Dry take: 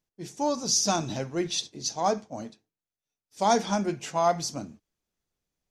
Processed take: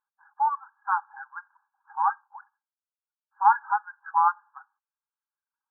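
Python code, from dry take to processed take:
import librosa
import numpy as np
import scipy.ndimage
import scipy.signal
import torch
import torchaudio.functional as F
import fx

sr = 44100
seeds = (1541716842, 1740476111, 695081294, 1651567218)

y = fx.brickwall_bandpass(x, sr, low_hz=790.0, high_hz=1700.0)
y = fx.dereverb_blind(y, sr, rt60_s=0.98)
y = y * librosa.db_to_amplitude(8.5)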